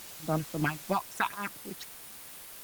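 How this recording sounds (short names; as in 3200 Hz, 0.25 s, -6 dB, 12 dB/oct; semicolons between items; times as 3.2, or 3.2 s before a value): tremolo triangle 3.5 Hz, depth 95%; phasing stages 6, 3.8 Hz, lowest notch 460–3100 Hz; a quantiser's noise floor 8-bit, dither triangular; Opus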